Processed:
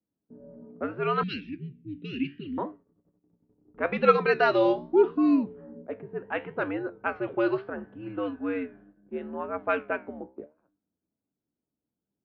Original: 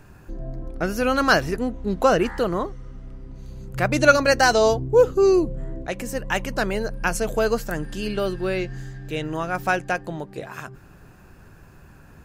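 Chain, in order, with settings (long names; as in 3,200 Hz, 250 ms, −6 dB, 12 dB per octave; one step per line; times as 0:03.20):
low-pass that shuts in the quiet parts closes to 300 Hz, open at −13.5 dBFS
noise gate −34 dBFS, range −21 dB
single-sideband voice off tune −91 Hz 300–3,500 Hz
flanger 0.74 Hz, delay 9.6 ms, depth 7.9 ms, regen +74%
0:01.23–0:02.58: elliptic band-stop filter 270–2,500 Hz, stop band 80 dB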